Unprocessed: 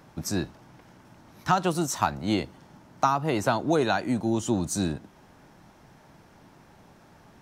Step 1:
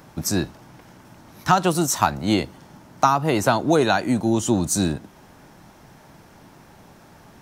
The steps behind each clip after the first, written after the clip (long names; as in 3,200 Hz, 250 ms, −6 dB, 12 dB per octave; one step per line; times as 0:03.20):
high-shelf EQ 8,400 Hz +7 dB
level +5.5 dB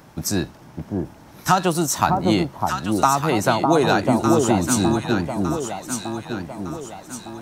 delay that swaps between a low-pass and a high-pass 604 ms, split 1,000 Hz, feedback 66%, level −2 dB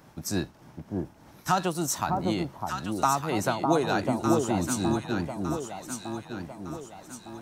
shaped tremolo triangle 3.3 Hz, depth 50%
level −5.5 dB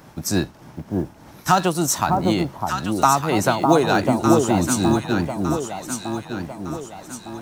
one scale factor per block 7 bits
level +8 dB